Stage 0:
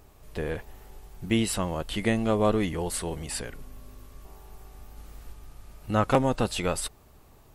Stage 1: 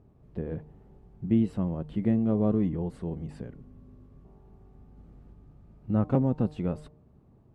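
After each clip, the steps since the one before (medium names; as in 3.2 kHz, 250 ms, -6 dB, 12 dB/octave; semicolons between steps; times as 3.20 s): band-pass filter 170 Hz, Q 1.2; de-hum 151.7 Hz, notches 7; trim +4.5 dB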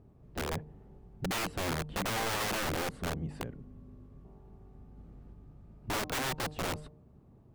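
integer overflow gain 28 dB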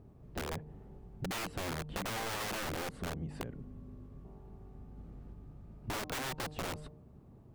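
compression, threshold -38 dBFS, peak gain reduction 7.5 dB; trim +2 dB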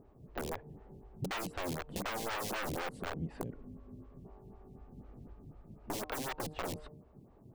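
lamp-driven phase shifter 4 Hz; trim +3 dB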